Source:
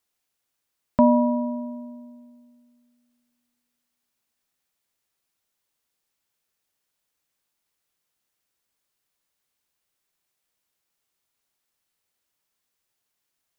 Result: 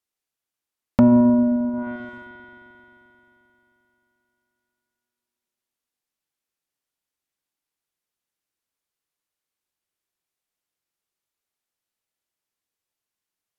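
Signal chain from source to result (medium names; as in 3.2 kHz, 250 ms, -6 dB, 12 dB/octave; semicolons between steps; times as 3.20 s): waveshaping leveller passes 3; peaking EQ 330 Hz +2.5 dB 0.6 oct; spring tank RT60 3.6 s, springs 44 ms, chirp 40 ms, DRR 6.5 dB; low-pass that closes with the level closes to 520 Hz, closed at -17 dBFS; trim -1.5 dB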